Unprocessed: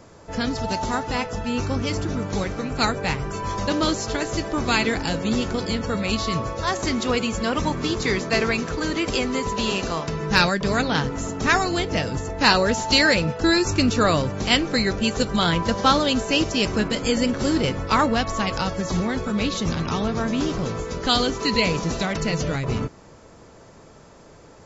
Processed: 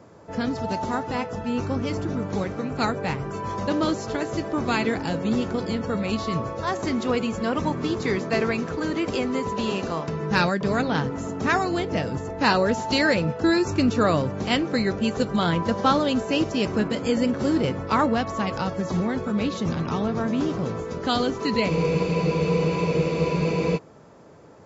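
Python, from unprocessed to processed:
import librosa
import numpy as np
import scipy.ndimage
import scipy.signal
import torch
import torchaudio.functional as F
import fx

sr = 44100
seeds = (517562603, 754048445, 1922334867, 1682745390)

y = scipy.signal.sosfilt(scipy.signal.butter(2, 100.0, 'highpass', fs=sr, output='sos'), x)
y = fx.high_shelf(y, sr, hz=2100.0, db=-10.5)
y = fx.spec_freeze(y, sr, seeds[0], at_s=21.71, hold_s=2.05)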